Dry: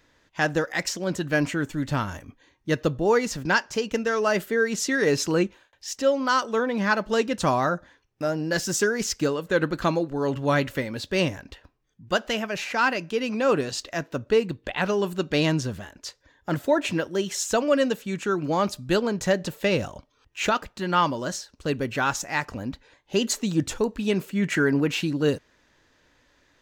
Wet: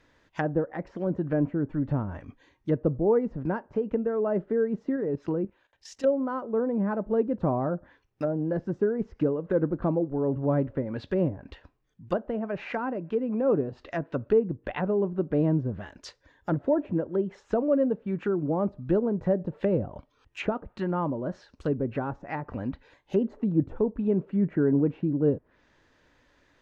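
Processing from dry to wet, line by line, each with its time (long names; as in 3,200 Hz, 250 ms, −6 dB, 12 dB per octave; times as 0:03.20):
0:04.96–0:06.04: output level in coarse steps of 13 dB
whole clip: treble cut that deepens with the level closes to 590 Hz, closed at −23 dBFS; high-shelf EQ 4,000 Hz −9.5 dB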